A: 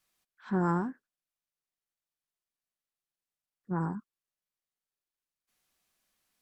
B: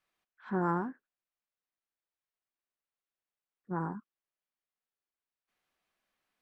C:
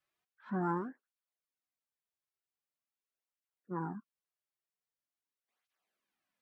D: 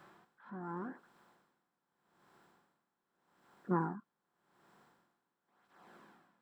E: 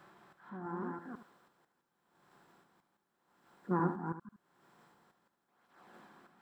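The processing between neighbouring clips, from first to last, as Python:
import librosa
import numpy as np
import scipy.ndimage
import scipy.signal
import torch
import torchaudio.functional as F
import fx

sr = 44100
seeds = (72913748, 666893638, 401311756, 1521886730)

y1 = fx.bass_treble(x, sr, bass_db=-6, treble_db=-14)
y2 = fx.flanger_cancel(y1, sr, hz=0.44, depth_ms=4.4)
y2 = y2 * librosa.db_to_amplitude(-1.5)
y3 = fx.bin_compress(y2, sr, power=0.6)
y3 = y3 * 10.0 ** (-21 * (0.5 - 0.5 * np.cos(2.0 * np.pi * 0.84 * np.arange(len(y3)) / sr)) / 20.0)
y3 = y3 * librosa.db_to_amplitude(8.5)
y4 = fx.reverse_delay(y3, sr, ms=165, wet_db=-2)
y4 = y4 + 10.0 ** (-10.5 / 20.0) * np.pad(y4, (int(73 * sr / 1000.0), 0))[:len(y4)]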